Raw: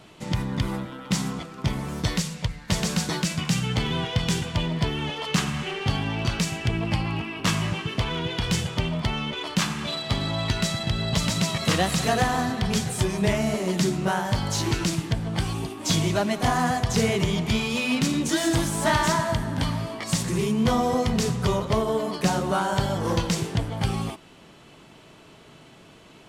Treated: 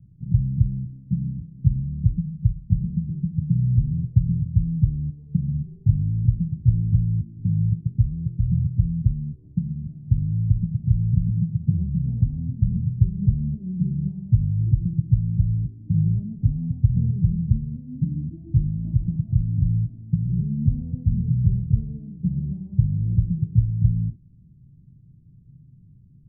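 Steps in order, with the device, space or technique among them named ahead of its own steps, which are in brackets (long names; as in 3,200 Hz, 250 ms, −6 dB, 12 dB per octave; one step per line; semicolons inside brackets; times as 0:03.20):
the neighbour's flat through the wall (low-pass filter 150 Hz 24 dB per octave; parametric band 120 Hz +3.5 dB)
level +6.5 dB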